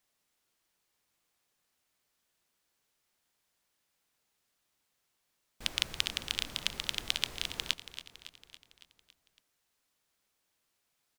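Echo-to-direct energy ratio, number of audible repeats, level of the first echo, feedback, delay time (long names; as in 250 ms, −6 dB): −11.0 dB, 5, −13.0 dB, 58%, 279 ms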